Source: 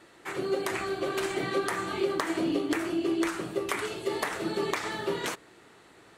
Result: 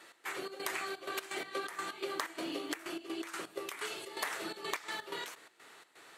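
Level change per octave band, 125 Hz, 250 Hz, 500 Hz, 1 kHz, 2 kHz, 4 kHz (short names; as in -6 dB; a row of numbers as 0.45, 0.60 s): -20.0, -14.0, -12.5, -7.0, -5.5, -4.0 dB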